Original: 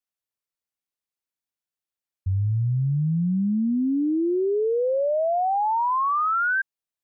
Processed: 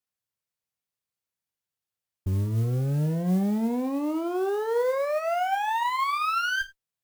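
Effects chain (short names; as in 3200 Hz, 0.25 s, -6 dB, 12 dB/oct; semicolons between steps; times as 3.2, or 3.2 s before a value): bell 110 Hz +8.5 dB 0.77 oct; limiter -17.5 dBFS, peak gain reduction 6.5 dB; one-sided clip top -34.5 dBFS, bottom -21 dBFS; non-linear reverb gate 0.12 s falling, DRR 7 dB; modulation noise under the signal 27 dB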